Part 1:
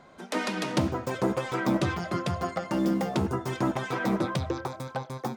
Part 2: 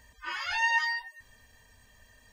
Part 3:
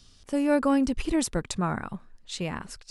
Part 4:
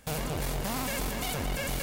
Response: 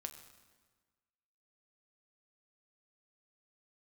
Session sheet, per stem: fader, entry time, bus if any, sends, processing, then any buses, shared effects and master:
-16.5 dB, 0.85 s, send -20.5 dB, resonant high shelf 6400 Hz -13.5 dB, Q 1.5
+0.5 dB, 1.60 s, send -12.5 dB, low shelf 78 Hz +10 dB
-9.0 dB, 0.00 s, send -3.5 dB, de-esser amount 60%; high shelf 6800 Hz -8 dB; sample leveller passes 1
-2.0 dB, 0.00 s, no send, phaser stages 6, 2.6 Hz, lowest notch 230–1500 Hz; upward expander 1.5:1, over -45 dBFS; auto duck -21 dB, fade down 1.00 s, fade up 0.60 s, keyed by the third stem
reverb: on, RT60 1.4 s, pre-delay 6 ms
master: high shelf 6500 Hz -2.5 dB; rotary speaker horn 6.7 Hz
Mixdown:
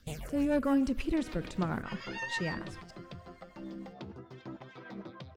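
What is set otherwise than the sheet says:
stem 2 +0.5 dB -> -9.0 dB; stem 4: missing upward expander 1.5:1, over -45 dBFS

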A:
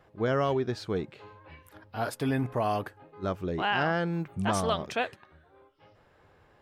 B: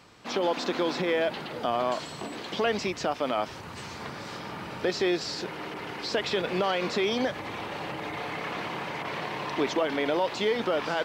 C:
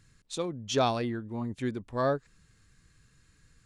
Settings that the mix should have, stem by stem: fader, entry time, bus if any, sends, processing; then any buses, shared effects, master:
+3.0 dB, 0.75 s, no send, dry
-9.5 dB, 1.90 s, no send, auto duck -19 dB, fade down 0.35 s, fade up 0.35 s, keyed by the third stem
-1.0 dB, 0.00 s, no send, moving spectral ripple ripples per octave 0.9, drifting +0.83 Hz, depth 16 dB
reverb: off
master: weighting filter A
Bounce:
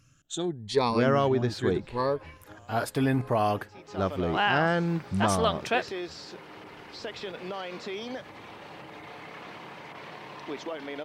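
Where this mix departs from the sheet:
stem B: entry 1.90 s -> 0.90 s; master: missing weighting filter A

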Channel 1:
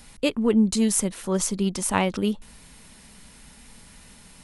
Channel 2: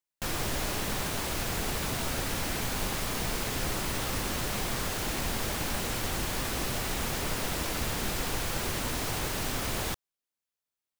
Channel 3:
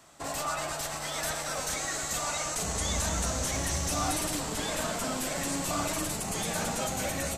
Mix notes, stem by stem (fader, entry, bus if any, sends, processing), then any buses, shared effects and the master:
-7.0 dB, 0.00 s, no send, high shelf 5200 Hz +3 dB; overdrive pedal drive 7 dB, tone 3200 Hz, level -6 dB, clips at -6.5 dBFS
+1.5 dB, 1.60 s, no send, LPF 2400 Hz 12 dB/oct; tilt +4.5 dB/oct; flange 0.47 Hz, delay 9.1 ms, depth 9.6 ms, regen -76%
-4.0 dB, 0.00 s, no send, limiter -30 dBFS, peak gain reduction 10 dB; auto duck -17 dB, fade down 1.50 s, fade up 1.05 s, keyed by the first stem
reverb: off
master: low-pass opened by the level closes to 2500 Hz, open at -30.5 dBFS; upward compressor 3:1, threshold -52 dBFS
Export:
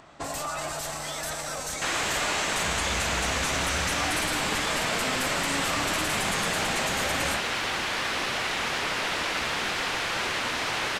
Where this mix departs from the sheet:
stem 1: muted; stem 2 +1.5 dB -> +11.0 dB; stem 3 -4.0 dB -> +6.5 dB

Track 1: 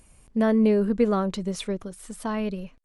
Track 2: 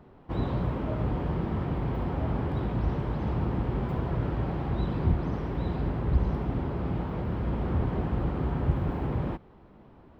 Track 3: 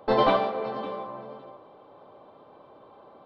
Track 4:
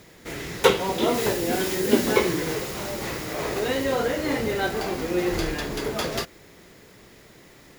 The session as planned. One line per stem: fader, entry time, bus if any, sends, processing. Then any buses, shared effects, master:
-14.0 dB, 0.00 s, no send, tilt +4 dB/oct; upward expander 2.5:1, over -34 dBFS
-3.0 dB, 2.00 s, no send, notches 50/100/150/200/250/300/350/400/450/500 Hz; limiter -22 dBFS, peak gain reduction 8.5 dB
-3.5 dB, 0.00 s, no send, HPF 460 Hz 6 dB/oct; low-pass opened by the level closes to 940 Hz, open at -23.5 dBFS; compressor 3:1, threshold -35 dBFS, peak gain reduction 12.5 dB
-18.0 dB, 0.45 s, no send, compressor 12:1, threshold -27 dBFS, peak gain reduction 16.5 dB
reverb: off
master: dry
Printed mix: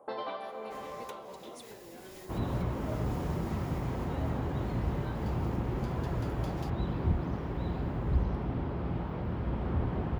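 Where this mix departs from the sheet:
stem 1 -14.0 dB -> -21.5 dB; stem 2: missing limiter -22 dBFS, peak gain reduction 8.5 dB

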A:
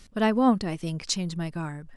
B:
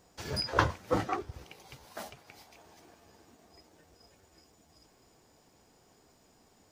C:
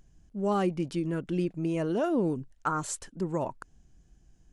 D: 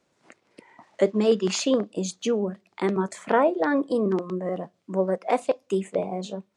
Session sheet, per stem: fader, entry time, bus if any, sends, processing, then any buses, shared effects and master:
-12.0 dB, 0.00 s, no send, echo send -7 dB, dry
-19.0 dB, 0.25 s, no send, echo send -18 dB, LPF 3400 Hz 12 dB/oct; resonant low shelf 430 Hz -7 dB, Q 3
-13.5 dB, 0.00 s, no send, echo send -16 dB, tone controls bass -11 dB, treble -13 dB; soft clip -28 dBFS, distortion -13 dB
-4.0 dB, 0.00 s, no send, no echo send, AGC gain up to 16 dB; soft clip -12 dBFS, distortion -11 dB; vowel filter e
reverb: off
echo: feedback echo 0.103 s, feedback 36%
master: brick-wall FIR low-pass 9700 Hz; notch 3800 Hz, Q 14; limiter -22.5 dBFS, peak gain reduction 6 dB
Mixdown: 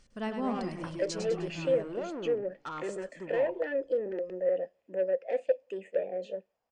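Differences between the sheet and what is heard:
stem C -13.5 dB -> -5.5 dB; master: missing limiter -22.5 dBFS, peak gain reduction 6 dB

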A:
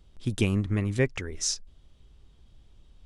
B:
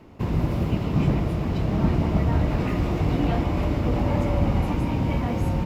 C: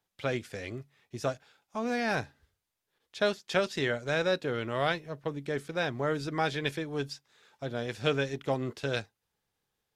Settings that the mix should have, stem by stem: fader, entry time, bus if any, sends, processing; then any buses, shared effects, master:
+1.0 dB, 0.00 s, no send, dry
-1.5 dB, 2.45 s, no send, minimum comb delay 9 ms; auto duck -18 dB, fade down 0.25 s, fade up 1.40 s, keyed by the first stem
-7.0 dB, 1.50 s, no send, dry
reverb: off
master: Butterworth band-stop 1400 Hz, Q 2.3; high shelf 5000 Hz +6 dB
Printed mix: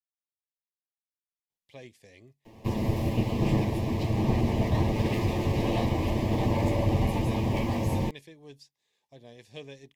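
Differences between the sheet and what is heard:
stem A: muted; stem C -7.0 dB -> -15.0 dB

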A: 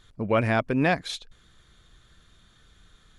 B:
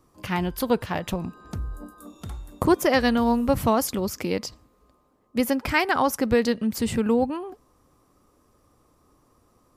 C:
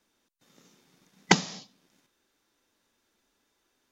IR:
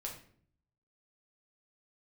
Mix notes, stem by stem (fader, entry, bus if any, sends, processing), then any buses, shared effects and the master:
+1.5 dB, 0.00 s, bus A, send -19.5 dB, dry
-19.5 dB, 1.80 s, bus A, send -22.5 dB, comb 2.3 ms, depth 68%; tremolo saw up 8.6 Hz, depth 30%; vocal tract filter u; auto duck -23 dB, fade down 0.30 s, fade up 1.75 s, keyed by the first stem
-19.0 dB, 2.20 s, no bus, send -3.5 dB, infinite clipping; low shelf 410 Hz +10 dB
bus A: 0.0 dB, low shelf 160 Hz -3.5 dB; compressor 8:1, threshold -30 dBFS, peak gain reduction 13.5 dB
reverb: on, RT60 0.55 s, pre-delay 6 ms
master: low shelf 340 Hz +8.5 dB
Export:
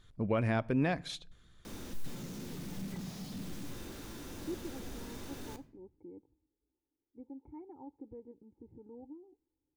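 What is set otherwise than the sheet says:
stem A +1.5 dB -> -9.0 dB; stem C: entry 2.20 s -> 1.65 s

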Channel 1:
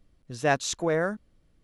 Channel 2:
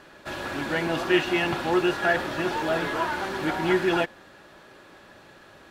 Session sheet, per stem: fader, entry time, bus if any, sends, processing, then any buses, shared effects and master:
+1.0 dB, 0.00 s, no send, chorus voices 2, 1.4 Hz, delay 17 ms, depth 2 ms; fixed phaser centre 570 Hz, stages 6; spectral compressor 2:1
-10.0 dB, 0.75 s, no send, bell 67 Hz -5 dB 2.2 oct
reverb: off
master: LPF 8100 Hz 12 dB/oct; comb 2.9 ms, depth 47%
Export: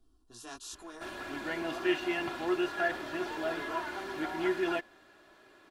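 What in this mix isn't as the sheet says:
stem 1 +1.0 dB -> -9.5 dB; master: missing LPF 8100 Hz 12 dB/oct

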